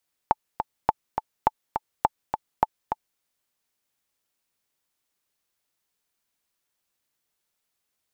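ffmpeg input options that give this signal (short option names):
-f lavfi -i "aevalsrc='pow(10,(-4.5-7*gte(mod(t,2*60/207),60/207))/20)*sin(2*PI*872*mod(t,60/207))*exp(-6.91*mod(t,60/207)/0.03)':d=2.89:s=44100"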